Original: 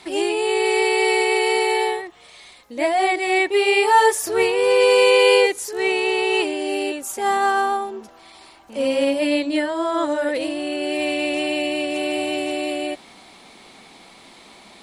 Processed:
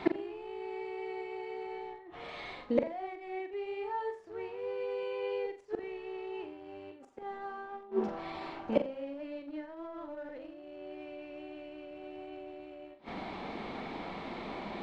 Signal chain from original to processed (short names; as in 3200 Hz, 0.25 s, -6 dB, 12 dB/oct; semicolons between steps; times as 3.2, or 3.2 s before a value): notches 60/120/180/240 Hz; flipped gate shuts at -20 dBFS, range -29 dB; in parallel at -11 dB: bit-crush 8-bit; on the sum: tape spacing loss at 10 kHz 42 dB; flutter echo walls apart 7.3 m, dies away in 0.31 s; gain +7.5 dB